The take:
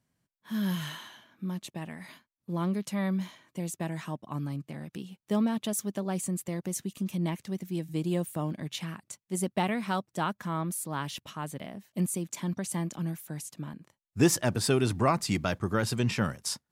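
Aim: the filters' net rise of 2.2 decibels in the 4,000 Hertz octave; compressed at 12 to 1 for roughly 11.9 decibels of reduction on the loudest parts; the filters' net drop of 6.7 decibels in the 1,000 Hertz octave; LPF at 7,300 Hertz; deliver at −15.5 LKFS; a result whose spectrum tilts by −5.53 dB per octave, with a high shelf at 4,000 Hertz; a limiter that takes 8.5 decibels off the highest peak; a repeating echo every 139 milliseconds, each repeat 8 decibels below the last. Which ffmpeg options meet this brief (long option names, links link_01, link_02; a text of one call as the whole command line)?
ffmpeg -i in.wav -af "lowpass=7300,equalizer=frequency=1000:width_type=o:gain=-9,highshelf=frequency=4000:gain=-5.5,equalizer=frequency=4000:width_type=o:gain=7.5,acompressor=threshold=-29dB:ratio=12,alimiter=level_in=3dB:limit=-24dB:level=0:latency=1,volume=-3dB,aecho=1:1:139|278|417|556|695:0.398|0.159|0.0637|0.0255|0.0102,volume=21.5dB" out.wav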